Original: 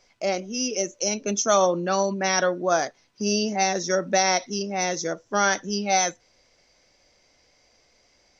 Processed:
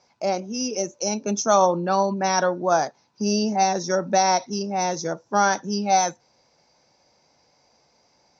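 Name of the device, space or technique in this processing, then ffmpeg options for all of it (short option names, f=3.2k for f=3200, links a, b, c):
car door speaker: -filter_complex "[0:a]highpass=84,equalizer=f=150:t=q:w=4:g=7,equalizer=f=880:t=q:w=4:g=10,equalizer=f=2k:t=q:w=4:g=-7,equalizer=f=3.1k:t=q:w=4:g=-8,lowpass=f=6.6k:w=0.5412,lowpass=f=6.6k:w=1.3066,asettb=1/sr,asplit=3[a][b][c];[a]atrim=end=1.754[d];[b]atrim=start=1.75:end=2.17,asetpts=PTS-STARTPTS,afade=t=in:d=0.004:c=qsin,afade=t=out:st=0.416:d=0.004:c=qsin,lowpass=f=5.1k:w=0.5412,lowpass=f=5.1k:w=1.3066[e];[c]atrim=start=2.166[f];[d][e]acrossfade=d=0.004:c1=hsin:c2=qsin[g];[g][f]acrossfade=d=0.004:c1=qsin:c2=hsin,equalizer=f=220:t=o:w=0.23:g=3.5"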